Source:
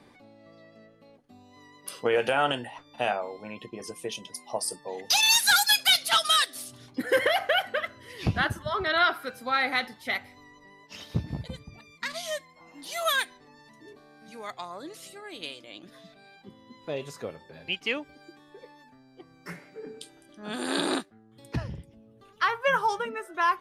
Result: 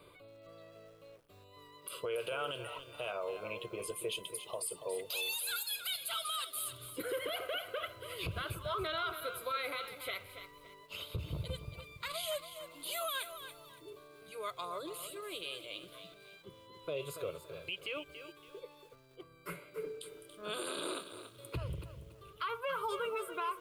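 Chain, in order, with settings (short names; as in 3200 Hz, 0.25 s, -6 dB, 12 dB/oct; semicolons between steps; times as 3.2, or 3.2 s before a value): high shelf 9600 Hz +11 dB; fixed phaser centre 1200 Hz, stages 8; compressor, threshold -31 dBFS, peak gain reduction 13 dB; limiter -30 dBFS, peak gain reduction 11 dB; lo-fi delay 0.282 s, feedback 35%, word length 10-bit, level -10 dB; gain +1 dB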